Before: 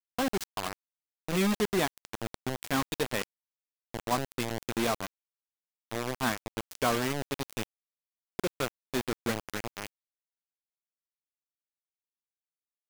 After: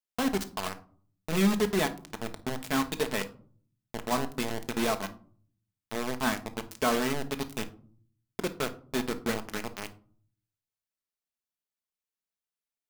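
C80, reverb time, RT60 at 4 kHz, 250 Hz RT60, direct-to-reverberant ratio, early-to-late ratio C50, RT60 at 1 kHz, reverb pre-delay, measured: 20.5 dB, 0.50 s, 0.25 s, 0.75 s, 7.5 dB, 15.0 dB, 0.45 s, 5 ms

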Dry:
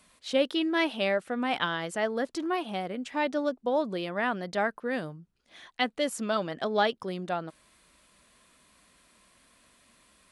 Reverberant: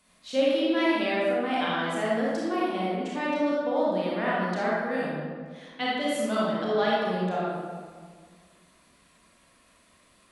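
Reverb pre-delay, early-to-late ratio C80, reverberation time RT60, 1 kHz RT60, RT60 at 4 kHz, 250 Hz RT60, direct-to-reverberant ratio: 26 ms, 0.0 dB, 1.8 s, 1.6 s, 1.0 s, 2.3 s, -7.0 dB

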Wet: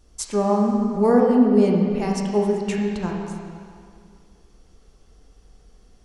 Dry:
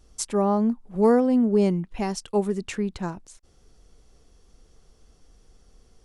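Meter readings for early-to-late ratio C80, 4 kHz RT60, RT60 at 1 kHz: 3.0 dB, 2.1 s, 2.2 s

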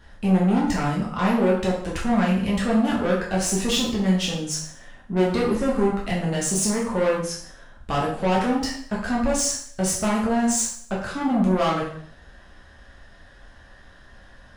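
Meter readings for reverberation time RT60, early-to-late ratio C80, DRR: 0.60 s, 7.5 dB, -5.5 dB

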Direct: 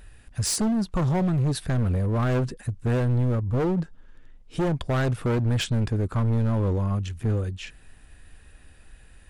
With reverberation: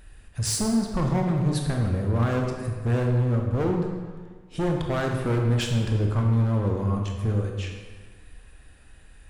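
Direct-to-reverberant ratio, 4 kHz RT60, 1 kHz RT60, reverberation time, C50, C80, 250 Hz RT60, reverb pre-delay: 1.5 dB, 1.1 s, 1.6 s, 1.6 s, 3.5 dB, 5.0 dB, 1.5 s, 22 ms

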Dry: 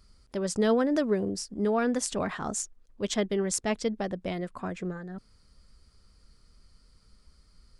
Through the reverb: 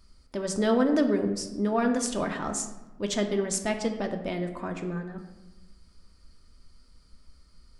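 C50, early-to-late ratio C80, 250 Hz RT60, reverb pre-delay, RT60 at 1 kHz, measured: 8.5 dB, 10.5 dB, 1.4 s, 3 ms, 1.1 s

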